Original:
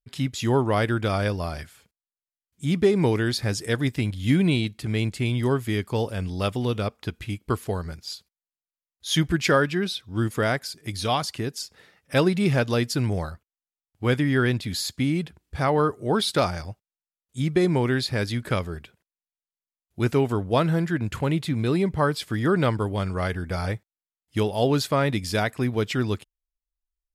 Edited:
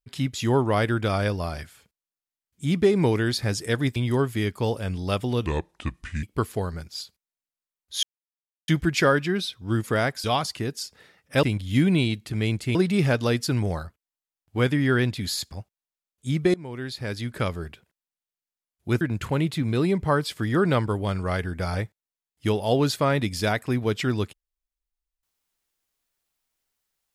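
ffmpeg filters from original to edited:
ffmpeg -i in.wav -filter_complex "[0:a]asplit=11[link_01][link_02][link_03][link_04][link_05][link_06][link_07][link_08][link_09][link_10][link_11];[link_01]atrim=end=3.962[link_12];[link_02]atrim=start=5.278:end=6.784[link_13];[link_03]atrim=start=6.78:end=7.35,asetpts=PTS-STARTPTS,asetrate=32634,aresample=44100[link_14];[link_04]atrim=start=7.346:end=9.15,asetpts=PTS-STARTPTS,afade=type=out:start_time=1.8:duration=0.004:curve=hsin,apad=pad_dur=0.65[link_15];[link_05]atrim=start=9.15:end=10.712,asetpts=PTS-STARTPTS,afade=type=in:duration=0.004:curve=hsin[link_16];[link_06]atrim=start=11.028:end=12.222[link_17];[link_07]atrim=start=3.958:end=5.282[link_18];[link_08]atrim=start=12.218:end=14.992[link_19];[link_09]atrim=start=16.628:end=17.65,asetpts=PTS-STARTPTS,afade=type=out:start_time=1.018:duration=0.004:curve=hsin:silence=0.0794328[link_20];[link_10]atrim=start=17.65:end=20.122,asetpts=PTS-STARTPTS,afade=type=in:duration=1.07:silence=0.0794328[link_21];[link_11]atrim=start=20.918[link_22];[link_12][link_13]acrossfade=duration=0.004:curve1=hsin:curve2=hsin[link_23];[link_23][link_14]acrossfade=duration=0.004:curve1=hsin:curve2=hsin[link_24];[link_15][link_16]concat=n=2:v=0:a=1[link_25];[link_24][link_25]acrossfade=duration=0.004:curve1=hsin:curve2=hsin[link_26];[link_26][link_17]acrossfade=duration=0.004:curve1=hsin:curve2=hsin[link_27];[link_27][link_18]acrossfade=duration=0.004:curve1=hsin:curve2=hsin[link_28];[link_28][link_19]acrossfade=duration=0.004:curve1=hsin:curve2=hsin[link_29];[link_20][link_21]concat=n=2:v=0:a=1[link_30];[link_29][link_30]acrossfade=duration=0.004:curve1=hsin:curve2=hsin[link_31];[link_31][link_22]acrossfade=duration=0.004:curve1=hsin:curve2=hsin" out.wav

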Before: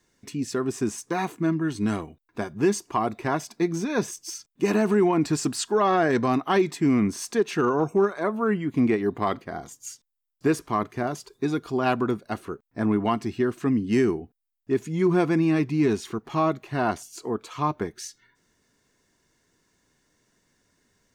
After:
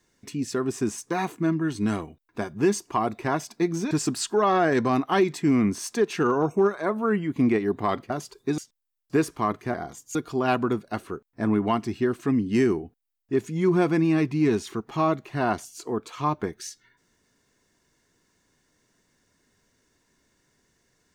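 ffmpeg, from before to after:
ffmpeg -i in.wav -filter_complex "[0:a]asplit=6[link_01][link_02][link_03][link_04][link_05][link_06];[link_01]atrim=end=3.912[link_07];[link_02]atrim=start=5.288:end=9.482[link_08];[link_03]atrim=start=11.048:end=11.532[link_09];[link_04]atrim=start=9.888:end=11.052[link_10];[link_05]atrim=start=9.478:end=9.892[link_11];[link_06]atrim=start=11.528[link_12];[link_07][link_08]acrossfade=duration=0.004:curve1=hsin:curve2=hsin[link_13];[link_13][link_09]acrossfade=duration=0.004:curve1=hsin:curve2=hsin[link_14];[link_14][link_10]acrossfade=duration=0.004:curve1=hsin:curve2=hsin[link_15];[link_15][link_11]acrossfade=duration=0.004:curve1=hsin:curve2=hsin[link_16];[link_16][link_12]acrossfade=duration=0.004:curve1=hsin:curve2=hsin" out.wav

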